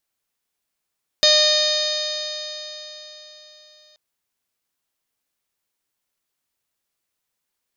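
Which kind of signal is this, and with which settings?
stiff-string partials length 2.73 s, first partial 607 Hz, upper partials −14.5/−7/−11/−9/3/0/0.5/−17/−7/−16 dB, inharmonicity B 0.00079, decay 4.04 s, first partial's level −18 dB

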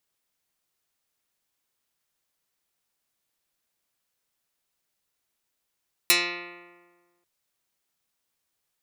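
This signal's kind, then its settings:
Karplus-Strong string F3, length 1.14 s, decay 1.54 s, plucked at 0.11, dark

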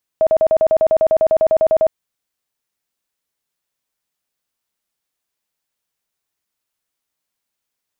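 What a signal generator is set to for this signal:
tone bursts 638 Hz, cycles 37, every 0.10 s, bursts 17, −9.5 dBFS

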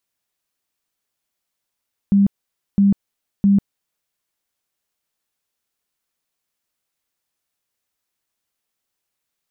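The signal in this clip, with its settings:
tone bursts 199 Hz, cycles 29, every 0.66 s, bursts 3, −10 dBFS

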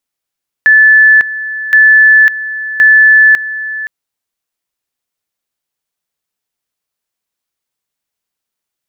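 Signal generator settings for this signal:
tone at two levels in turn 1,740 Hz −2 dBFS, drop 14.5 dB, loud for 0.55 s, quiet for 0.52 s, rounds 3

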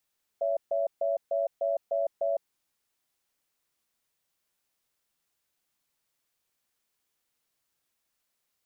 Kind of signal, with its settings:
tone pair in a cadence 564 Hz, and 668 Hz, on 0.16 s, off 0.14 s, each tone −27.5 dBFS 1.98 s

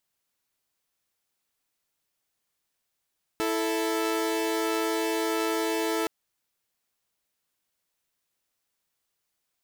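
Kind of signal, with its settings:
held notes E4/A4 saw, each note −25.5 dBFS 2.67 s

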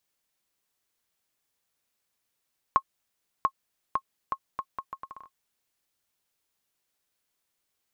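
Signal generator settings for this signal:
bouncing ball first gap 0.69 s, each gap 0.73, 1,080 Hz, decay 64 ms −9.5 dBFS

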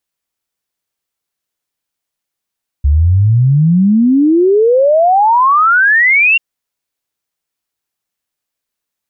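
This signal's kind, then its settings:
exponential sine sweep 68 Hz → 2,800 Hz 3.54 s −6 dBFS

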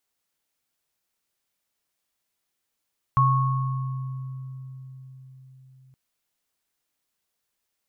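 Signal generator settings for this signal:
inharmonic partials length 2.77 s, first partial 131 Hz, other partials 1,100 Hz, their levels 1.5 dB, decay 4.93 s, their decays 1.85 s, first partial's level −18 dB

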